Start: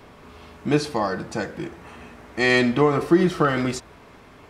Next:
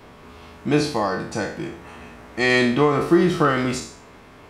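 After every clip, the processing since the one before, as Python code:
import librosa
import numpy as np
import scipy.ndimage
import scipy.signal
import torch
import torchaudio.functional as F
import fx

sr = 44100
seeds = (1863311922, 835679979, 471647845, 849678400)

y = fx.spec_trails(x, sr, decay_s=0.53)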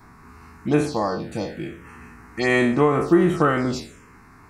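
y = fx.env_phaser(x, sr, low_hz=500.0, high_hz=4800.0, full_db=-15.0)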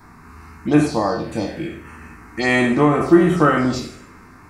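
y = fx.rev_double_slope(x, sr, seeds[0], early_s=0.54, late_s=2.3, knee_db=-25, drr_db=4.0)
y = y * librosa.db_to_amplitude(2.5)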